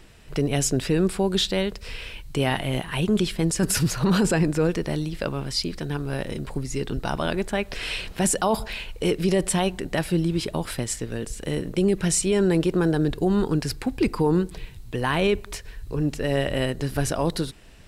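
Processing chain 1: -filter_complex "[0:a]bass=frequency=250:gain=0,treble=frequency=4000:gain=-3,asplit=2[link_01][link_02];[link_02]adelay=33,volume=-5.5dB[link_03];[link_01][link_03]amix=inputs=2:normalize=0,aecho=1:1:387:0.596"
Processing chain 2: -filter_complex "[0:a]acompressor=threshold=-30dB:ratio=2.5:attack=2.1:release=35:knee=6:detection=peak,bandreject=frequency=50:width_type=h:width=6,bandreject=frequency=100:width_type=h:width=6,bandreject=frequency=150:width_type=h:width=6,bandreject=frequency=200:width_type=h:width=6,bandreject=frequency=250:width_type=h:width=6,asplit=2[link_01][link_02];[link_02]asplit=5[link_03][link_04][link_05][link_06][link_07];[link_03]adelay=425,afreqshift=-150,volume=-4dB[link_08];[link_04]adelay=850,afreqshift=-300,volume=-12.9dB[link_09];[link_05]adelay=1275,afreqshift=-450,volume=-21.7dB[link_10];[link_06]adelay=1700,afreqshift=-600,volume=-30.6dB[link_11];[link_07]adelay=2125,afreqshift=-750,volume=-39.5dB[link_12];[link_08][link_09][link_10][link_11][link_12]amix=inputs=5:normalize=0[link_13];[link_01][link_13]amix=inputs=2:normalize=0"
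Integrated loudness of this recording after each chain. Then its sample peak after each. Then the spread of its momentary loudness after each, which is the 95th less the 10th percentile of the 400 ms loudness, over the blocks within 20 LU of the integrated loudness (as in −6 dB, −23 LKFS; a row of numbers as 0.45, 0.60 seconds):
−23.0, −30.5 LKFS; −7.5, −15.5 dBFS; 8, 5 LU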